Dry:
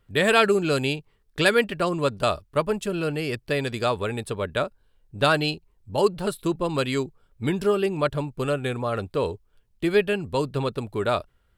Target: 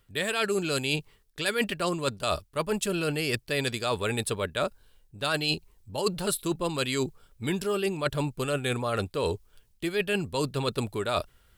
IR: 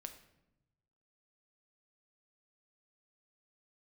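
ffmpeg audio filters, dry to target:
-af "highshelf=f=2900:g=11,areverse,acompressor=threshold=0.0398:ratio=10,areverse,volume=1.5"

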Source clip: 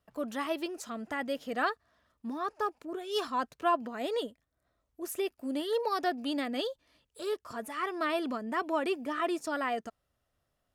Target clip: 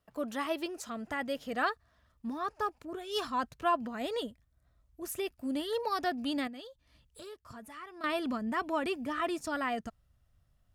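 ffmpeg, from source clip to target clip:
-filter_complex "[0:a]asubboost=boost=6:cutoff=150,asettb=1/sr,asplit=3[s0][s1][s2];[s0]atrim=end=6.474[s3];[s1]atrim=start=6.47:end=8.04,asetpts=PTS-STARTPTS,afade=t=in:d=0.004:c=qsin,afade=t=out:st=1.566:d=0.004:c=qsin,acompressor=threshold=0.00398:ratio=3[s4];[s2]atrim=start=8.036[s5];[s3][s4]acrossfade=d=0.004:c1=hsin:c2=qsin[s6];[s6][s5]acrossfade=d=0.004:c1=qsin:c2=hsin"

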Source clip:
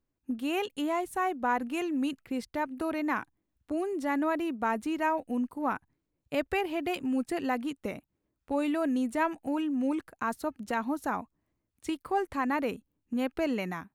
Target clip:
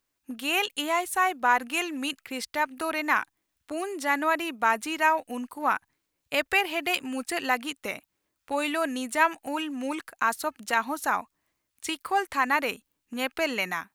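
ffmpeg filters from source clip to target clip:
-af "tiltshelf=f=630:g=-10,volume=1.33"

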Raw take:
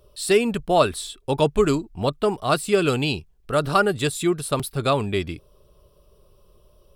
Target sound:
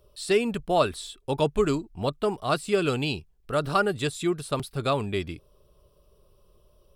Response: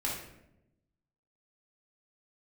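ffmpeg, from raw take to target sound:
-filter_complex "[0:a]acrossover=split=8300[s0][s1];[s1]acompressor=threshold=0.00631:ratio=4:attack=1:release=60[s2];[s0][s2]amix=inputs=2:normalize=0,volume=0.596"

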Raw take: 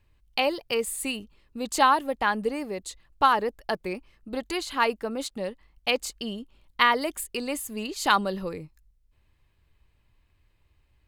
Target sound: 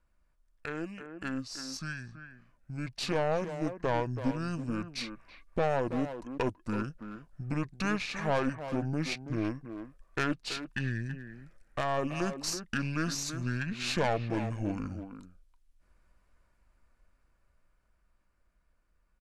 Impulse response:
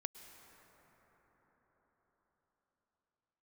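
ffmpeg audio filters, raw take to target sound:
-filter_complex "[0:a]asplit=2[s0][s1];[s1]acompressor=threshold=0.0112:ratio=6,volume=1[s2];[s0][s2]amix=inputs=2:normalize=0,alimiter=limit=0.237:level=0:latency=1:release=306,dynaudnorm=f=290:g=13:m=2.82,aeval=exprs='(tanh(4.47*val(0)+0.65)-tanh(0.65))/4.47':c=same,asplit=2[s3][s4];[s4]adelay=190,highpass=300,lowpass=3400,asoftclip=type=hard:threshold=0.126,volume=0.398[s5];[s3][s5]amix=inputs=2:normalize=0,asetrate=25442,aresample=44100,volume=0.355"

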